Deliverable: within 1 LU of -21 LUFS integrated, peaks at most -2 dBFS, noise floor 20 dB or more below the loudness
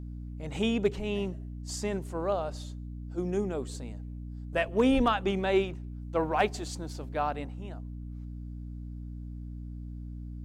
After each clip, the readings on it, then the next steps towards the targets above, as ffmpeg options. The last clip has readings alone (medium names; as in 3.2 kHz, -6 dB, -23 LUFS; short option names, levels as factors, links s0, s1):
hum 60 Hz; highest harmonic 300 Hz; hum level -37 dBFS; loudness -32.5 LUFS; peak level -14.5 dBFS; loudness target -21.0 LUFS
-> -af "bandreject=f=60:t=h:w=4,bandreject=f=120:t=h:w=4,bandreject=f=180:t=h:w=4,bandreject=f=240:t=h:w=4,bandreject=f=300:t=h:w=4"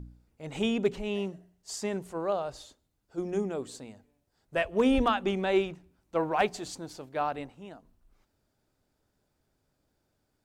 hum not found; loudness -31.0 LUFS; peak level -14.0 dBFS; loudness target -21.0 LUFS
-> -af "volume=3.16"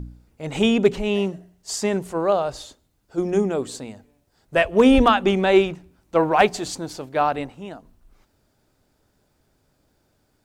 loudness -21.0 LUFS; peak level -4.0 dBFS; noise floor -67 dBFS